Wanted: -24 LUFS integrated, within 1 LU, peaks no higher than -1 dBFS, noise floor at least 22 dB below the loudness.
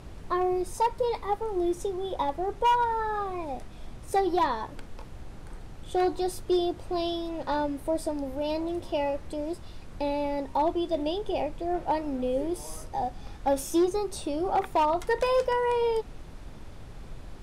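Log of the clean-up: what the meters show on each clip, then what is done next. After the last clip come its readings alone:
clipped 0.6%; flat tops at -18.0 dBFS; noise floor -44 dBFS; noise floor target -51 dBFS; loudness -29.0 LUFS; peak -18.0 dBFS; loudness target -24.0 LUFS
-> clip repair -18 dBFS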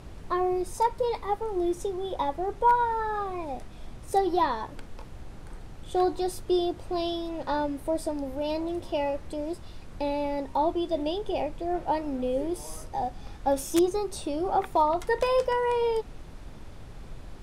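clipped 0.0%; noise floor -44 dBFS; noise floor target -51 dBFS
-> noise print and reduce 7 dB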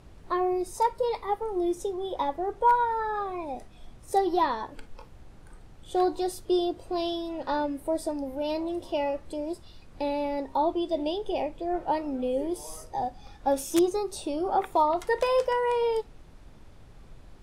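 noise floor -50 dBFS; noise floor target -51 dBFS
-> noise print and reduce 6 dB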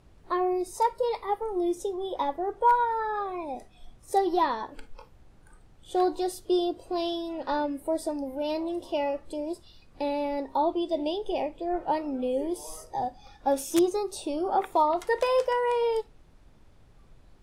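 noise floor -56 dBFS; loudness -28.5 LUFS; peak -9.0 dBFS; loudness target -24.0 LUFS
-> gain +4.5 dB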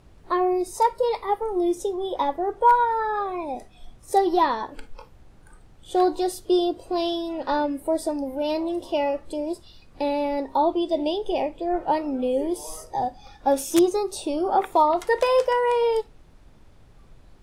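loudness -24.0 LUFS; peak -4.5 dBFS; noise floor -51 dBFS

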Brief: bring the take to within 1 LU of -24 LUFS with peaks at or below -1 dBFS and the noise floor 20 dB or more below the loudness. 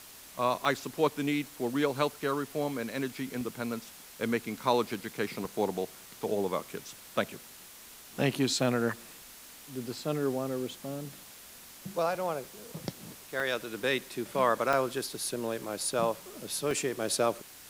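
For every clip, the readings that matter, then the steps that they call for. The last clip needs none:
dropouts 7; longest dropout 2.1 ms; noise floor -51 dBFS; noise floor target -52 dBFS; loudness -32.0 LUFS; peak -11.5 dBFS; loudness target -24.0 LUFS
-> interpolate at 0.65/3.41/5.45/13.4/14.73/15.36/16.71, 2.1 ms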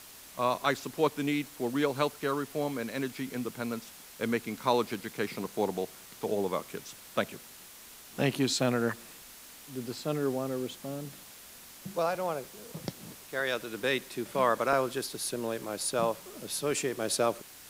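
dropouts 0; noise floor -51 dBFS; noise floor target -52 dBFS
-> denoiser 6 dB, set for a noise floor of -51 dBFS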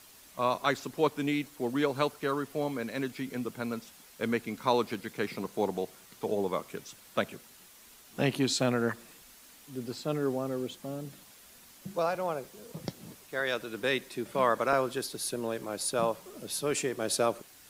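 noise floor -55 dBFS; loudness -32.0 LUFS; peak -11.5 dBFS; loudness target -24.0 LUFS
-> gain +8 dB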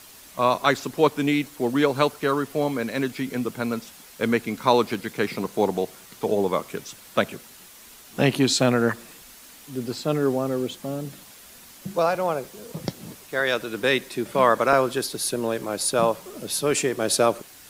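loudness -24.0 LUFS; peak -3.5 dBFS; noise floor -47 dBFS

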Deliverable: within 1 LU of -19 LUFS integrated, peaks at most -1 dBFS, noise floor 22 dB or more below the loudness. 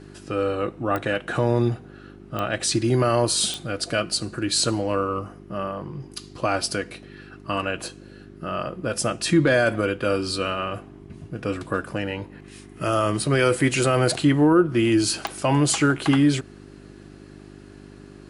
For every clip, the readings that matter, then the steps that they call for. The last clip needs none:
clicks 4; hum 50 Hz; harmonics up to 400 Hz; hum level -46 dBFS; loudness -23.0 LUFS; peak -6.0 dBFS; loudness target -19.0 LUFS
-> de-click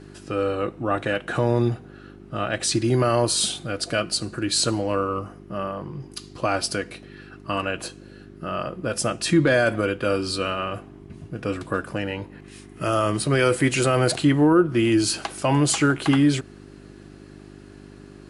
clicks 0; hum 50 Hz; harmonics up to 400 Hz; hum level -46 dBFS
-> de-hum 50 Hz, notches 8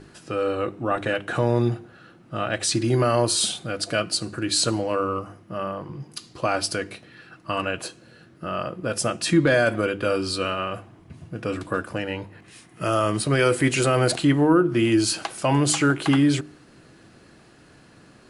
hum none; loudness -23.0 LUFS; peak -7.0 dBFS; loudness target -19.0 LUFS
-> gain +4 dB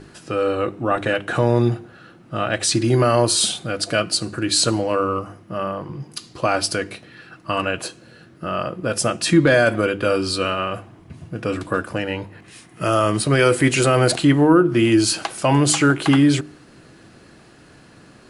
loudness -19.0 LUFS; peak -3.0 dBFS; noise floor -48 dBFS

